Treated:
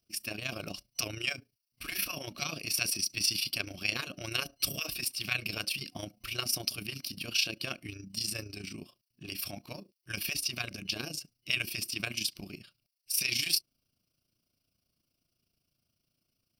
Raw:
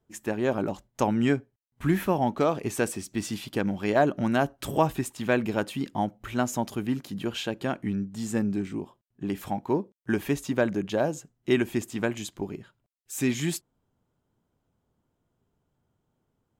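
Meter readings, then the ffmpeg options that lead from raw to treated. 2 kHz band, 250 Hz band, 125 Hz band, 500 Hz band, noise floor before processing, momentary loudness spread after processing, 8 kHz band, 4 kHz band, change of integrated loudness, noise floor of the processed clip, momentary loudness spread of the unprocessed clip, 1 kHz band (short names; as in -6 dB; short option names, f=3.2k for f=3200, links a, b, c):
-1.0 dB, -18.0 dB, -12.0 dB, -19.0 dB, -78 dBFS, 13 LU, +4.0 dB, +8.5 dB, -4.5 dB, -83 dBFS, 9 LU, -17.0 dB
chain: -af "aexciter=amount=5.3:drive=3.4:freq=2.9k,afftfilt=real='re*lt(hypot(re,im),0.251)':imag='im*lt(hypot(re,im),0.251)':win_size=1024:overlap=0.75,superequalizer=7b=0.562:9b=0.282:12b=3.16:14b=3.16:15b=0.251,tremolo=f=28:d=0.667,volume=-5dB"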